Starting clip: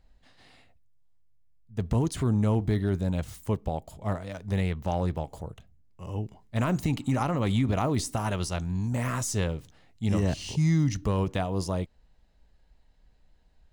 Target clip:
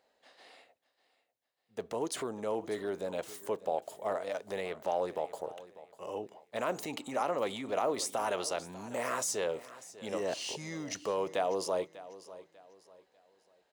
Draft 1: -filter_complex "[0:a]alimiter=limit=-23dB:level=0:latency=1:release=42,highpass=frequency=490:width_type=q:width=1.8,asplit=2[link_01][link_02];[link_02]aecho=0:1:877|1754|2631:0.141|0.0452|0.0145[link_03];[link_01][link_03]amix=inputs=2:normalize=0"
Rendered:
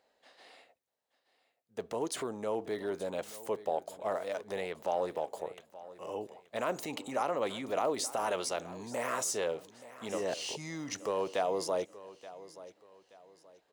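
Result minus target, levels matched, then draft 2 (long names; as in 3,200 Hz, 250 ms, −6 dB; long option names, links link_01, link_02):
echo 282 ms late
-filter_complex "[0:a]alimiter=limit=-23dB:level=0:latency=1:release=42,highpass=frequency=490:width_type=q:width=1.8,asplit=2[link_01][link_02];[link_02]aecho=0:1:595|1190|1785:0.141|0.0452|0.0145[link_03];[link_01][link_03]amix=inputs=2:normalize=0"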